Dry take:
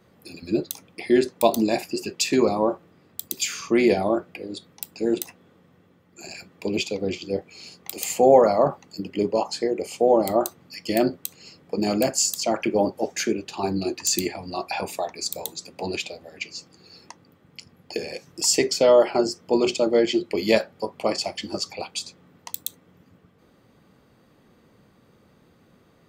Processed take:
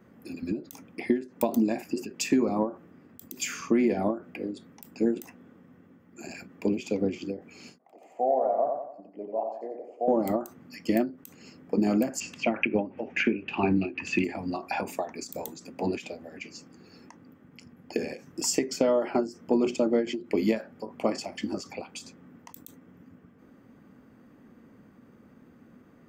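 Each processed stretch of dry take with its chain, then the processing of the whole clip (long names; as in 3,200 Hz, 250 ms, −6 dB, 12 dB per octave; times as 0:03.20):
0:07.78–0:10.08: resonant band-pass 680 Hz, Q 5.9 + repeating echo 90 ms, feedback 44%, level −5.5 dB
0:12.20–0:14.24: low-pass with resonance 2,600 Hz, resonance Q 5.3 + low-shelf EQ 140 Hz +7.5 dB
whole clip: graphic EQ with 15 bands 250 Hz +11 dB, 1,600 Hz +4 dB, 4,000 Hz −11 dB, 10,000 Hz −7 dB; downward compressor 6 to 1, threshold −18 dBFS; every ending faded ahead of time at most 180 dB per second; level −2 dB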